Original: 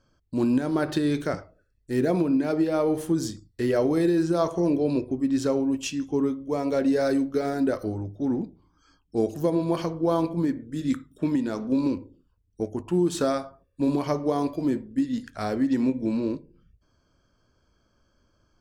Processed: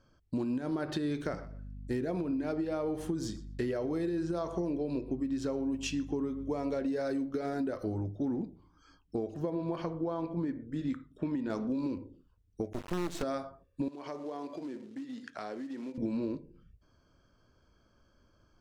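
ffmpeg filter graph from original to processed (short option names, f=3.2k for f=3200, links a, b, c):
-filter_complex "[0:a]asettb=1/sr,asplit=3[a][b][c];[a]atrim=end=1.254[d];[b]atrim=start=1.25:end=6.87,asetpts=PTS-STARTPTS,afade=t=in:d=0.004:c=qsin,afade=t=out:st=5.616:d=0.004:c=qsin,aeval=exprs='val(0)+0.00708*(sin(2*PI*50*n/s)+sin(2*PI*2*50*n/s)/2+sin(2*PI*3*50*n/s)/3+sin(2*PI*4*50*n/s)/4+sin(2*PI*5*50*n/s)/5)':c=same,asplit=2[e][f];[f]adelay=122,lowpass=f=4.9k:p=1,volume=-21dB,asplit=2[g][h];[h]adelay=122,lowpass=f=4.9k:p=1,volume=0.2[i];[e][g][i]amix=inputs=3:normalize=0,atrim=end_sample=247842[j];[c]atrim=start=6.866[k];[d][j]acrossfade=d=0.004:c1=hsin:c2=qsin[l];[l][k]acrossfade=d=0.004:c1=qsin:c2=hsin,asettb=1/sr,asplit=3[m][n][o];[m]atrim=end=9.164[p];[n]atrim=start=9.16:end=11.5,asetpts=PTS-STARTPTS,afade=t=in:d=0.004:c=qsin,afade=t=out:st=2.336:d=0.004:c=qsin,lowpass=f=2.1k:p=1,equalizer=f=200:w=0.34:g=-3.5[q];[o]atrim=start=11.496[r];[p][q]acrossfade=d=0.004:c1=hsin:c2=qsin[s];[s][r]acrossfade=d=0.004:c1=qsin:c2=hsin,asettb=1/sr,asplit=3[t][u][v];[t]atrim=end=12.734[w];[u]atrim=start=12.73:end=13.23,asetpts=PTS-STARTPTS,afade=t=in:d=0.004:c=qsin,afade=t=out:st=0.496:d=0.004:c=qsin,acrusher=bits=4:dc=4:mix=0:aa=0.000001,asoftclip=type=hard:threshold=-19.5dB[x];[v]atrim=start=13.226[y];[w][x]acrossfade=d=0.004:c1=hsin:c2=qsin[z];[z][y]acrossfade=d=0.004:c1=qsin:c2=hsin,asettb=1/sr,asplit=3[aa][ab][ac];[aa]atrim=end=13.884[ad];[ab]atrim=start=13.88:end=15.98,asetpts=PTS-STARTPTS,afade=t=in:d=0.004:c=qsin,afade=t=out:st=2.096:d=0.004:c=qsin,acompressor=threshold=-35dB:ratio=6:attack=3.2:release=140:knee=1:detection=peak,acrusher=bits=6:mode=log:mix=0:aa=0.000001,highpass=280,lowpass=7.8k[ae];[ac]atrim=start=15.976[af];[ad][ae]acrossfade=d=0.004:c1=hsin:c2=qsin[ag];[ag][af]acrossfade=d=0.004:c1=qsin:c2=hsin,highshelf=f=8.7k:g=-11.5,alimiter=limit=-19dB:level=0:latency=1:release=290,acompressor=threshold=-30dB:ratio=6"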